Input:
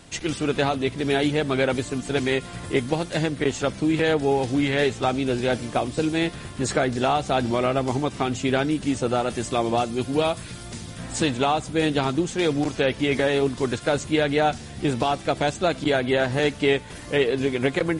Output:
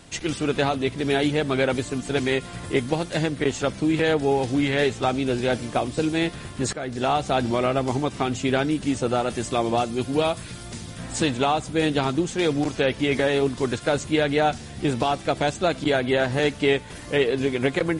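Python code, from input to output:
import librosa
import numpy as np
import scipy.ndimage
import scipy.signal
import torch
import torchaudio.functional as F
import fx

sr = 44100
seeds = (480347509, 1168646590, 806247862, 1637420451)

y = fx.edit(x, sr, fx.fade_in_from(start_s=6.73, length_s=0.4, floor_db=-15.5), tone=tone)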